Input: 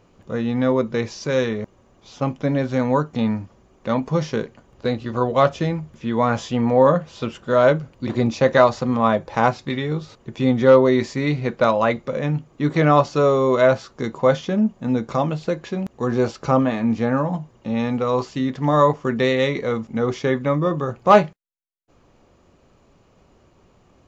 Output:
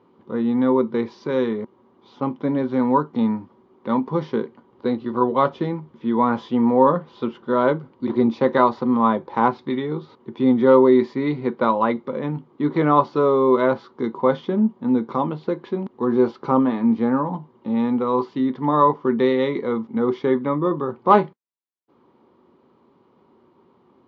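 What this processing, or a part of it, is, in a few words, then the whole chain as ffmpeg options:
kitchen radio: -af "highpass=180,equalizer=f=240:t=q:w=4:g=6,equalizer=f=370:t=q:w=4:g=7,equalizer=f=650:t=q:w=4:g=-8,equalizer=f=950:t=q:w=4:g=8,equalizer=f=1.7k:t=q:w=4:g=-5,equalizer=f=2.6k:t=q:w=4:g=-10,lowpass=f=3.6k:w=0.5412,lowpass=f=3.6k:w=1.3066,volume=-2dB"

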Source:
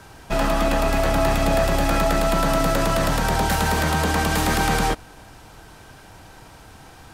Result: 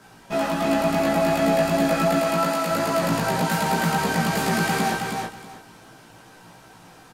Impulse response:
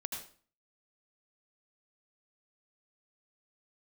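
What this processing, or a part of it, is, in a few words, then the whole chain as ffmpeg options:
double-tracked vocal: -filter_complex "[0:a]lowshelf=f=110:t=q:w=1.5:g=-12.5,asplit=2[a][b];[b]adelay=18,volume=-3dB[c];[a][c]amix=inputs=2:normalize=0,flanger=delay=15:depth=2.3:speed=2.7,asettb=1/sr,asplit=3[d][e][f];[d]atrim=end=2.194[g];[e]atrim=start=2.19:end=2.71,asetpts=PTS-STARTPTS,afade=t=in:d=0.004:c=qsin,afade=t=out:st=0.516:d=0.004:c=qsin,highpass=f=560:p=1[h];[f]atrim=start=2.706[i];[g][h]acrossfade=d=0.004:c1=hsin:c2=qsin[j];[j][i]acrossfade=d=0.004:c1=qsin:c2=hsin,aecho=1:1:321|642|963:0.631|0.133|0.0278,volume=-2.5dB"

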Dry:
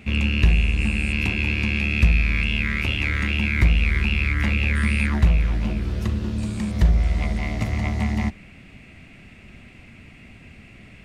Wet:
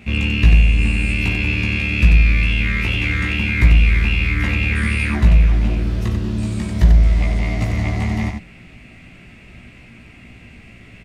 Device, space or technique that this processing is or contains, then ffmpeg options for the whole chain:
slapback doubling: -filter_complex "[0:a]asplit=3[a][b][c];[b]adelay=17,volume=-3.5dB[d];[c]adelay=92,volume=-5dB[e];[a][d][e]amix=inputs=3:normalize=0,volume=1dB"

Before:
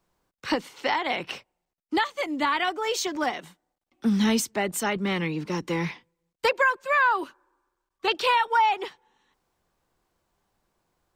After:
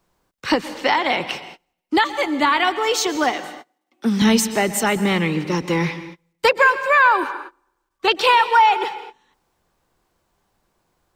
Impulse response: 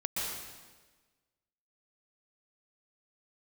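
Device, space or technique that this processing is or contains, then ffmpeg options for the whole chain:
keyed gated reverb: -filter_complex "[0:a]asettb=1/sr,asplit=3[a][b][c];[a]atrim=end=3.334[d];[b]atrim=start=3.33:end=4.22,asetpts=PTS-STARTPTS,afade=t=in:d=0.004:c=qsin,afade=t=out:st=0.886:d=0.004:c=qsin,highpass=240[e];[c]atrim=start=4.216[f];[d][e]acrossfade=d=0.004:c1=hsin:c2=qsin[g];[g][f]acrossfade=d=0.004:c1=qsin:c2=hsin,asplit=3[h][i][j];[1:a]atrim=start_sample=2205[k];[i][k]afir=irnorm=-1:irlink=0[l];[j]apad=whole_len=492090[m];[l][m]sidechaingate=range=-29dB:threshold=-59dB:ratio=16:detection=peak,volume=-15.5dB[n];[h][n]amix=inputs=2:normalize=0,volume=6dB"

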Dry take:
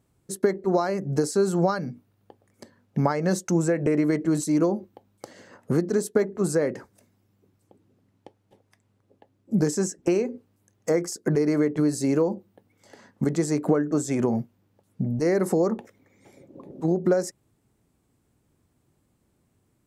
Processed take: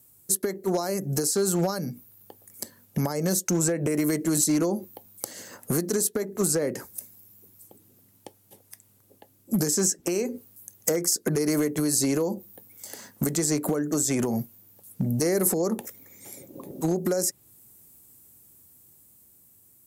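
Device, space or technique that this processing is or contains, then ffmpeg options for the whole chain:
FM broadcast chain: -filter_complex "[0:a]highpass=f=47:w=0.5412,highpass=f=47:w=1.3066,dynaudnorm=f=430:g=9:m=3.5dB,acrossover=split=740|5400[a][b][c];[a]acompressor=threshold=-19dB:ratio=4[d];[b]acompressor=threshold=-35dB:ratio=4[e];[c]acompressor=threshold=-47dB:ratio=4[f];[d][e][f]amix=inputs=3:normalize=0,aemphasis=mode=production:type=50fm,alimiter=limit=-15dB:level=0:latency=1:release=285,asoftclip=type=hard:threshold=-17.5dB,lowpass=f=15k:w=0.5412,lowpass=f=15k:w=1.3066,aemphasis=mode=production:type=50fm"

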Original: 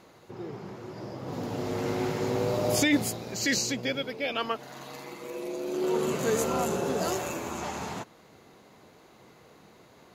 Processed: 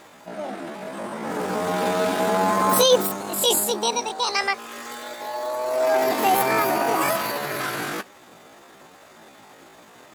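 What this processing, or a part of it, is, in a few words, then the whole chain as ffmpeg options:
chipmunk voice: -af "asetrate=76340,aresample=44100,atempo=0.577676,volume=7.5dB"

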